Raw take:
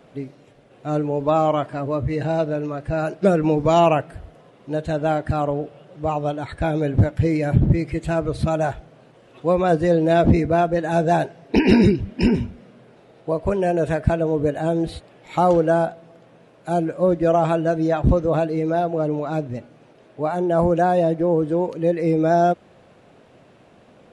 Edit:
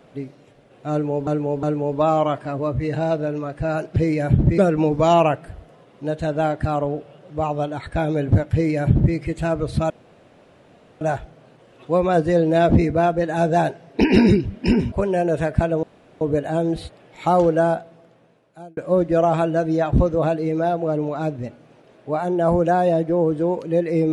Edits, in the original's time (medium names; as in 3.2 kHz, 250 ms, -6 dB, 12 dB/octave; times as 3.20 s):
0.91–1.27 s: loop, 3 plays
7.19–7.81 s: copy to 3.24 s
8.56 s: insert room tone 1.11 s
12.47–13.41 s: delete
14.32 s: insert room tone 0.38 s
15.86–16.88 s: fade out